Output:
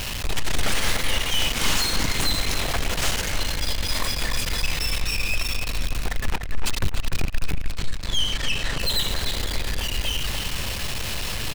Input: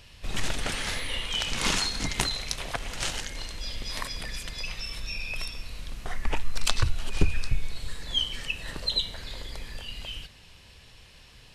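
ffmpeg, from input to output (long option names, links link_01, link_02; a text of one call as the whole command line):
ffmpeg -i in.wav -filter_complex "[0:a]aeval=exprs='val(0)+0.5*0.0422*sgn(val(0))':channel_layout=same,aeval=exprs='(tanh(28.2*val(0)+0.8)-tanh(0.8))/28.2':channel_layout=same,asplit=2[link_01][link_02];[link_02]adelay=296,lowpass=frequency=2600:poles=1,volume=-5dB,asplit=2[link_03][link_04];[link_04]adelay=296,lowpass=frequency=2600:poles=1,volume=0.39,asplit=2[link_05][link_06];[link_06]adelay=296,lowpass=frequency=2600:poles=1,volume=0.39,asplit=2[link_07][link_08];[link_08]adelay=296,lowpass=frequency=2600:poles=1,volume=0.39,asplit=2[link_09][link_10];[link_10]adelay=296,lowpass=frequency=2600:poles=1,volume=0.39[link_11];[link_03][link_05][link_07][link_09][link_11]amix=inputs=5:normalize=0[link_12];[link_01][link_12]amix=inputs=2:normalize=0,asettb=1/sr,asplit=3[link_13][link_14][link_15];[link_13]atrim=end=7.714[link_16];[link_14]atrim=start=7.71:end=8.8,asetpts=PTS-STARTPTS,afade=type=in:duration=0.004:curve=qsin,afade=type=out:start_time=1.086:duration=0.004:curve=qsin,acrossover=split=8100[link_17][link_18];[link_18]acompressor=threshold=-55dB:ratio=4:attack=1:release=60[link_19];[link_17][link_19]amix=inputs=2:normalize=0[link_20];[link_15]atrim=start=8.796[link_21];[link_16][link_20]acrossfade=duration=0.004:curve1=hsin:curve2=qsin[link_22];[link_22][link_21]acrossfade=duration=0.004:curve1=qsin:curve2=hsin,volume=8dB" out.wav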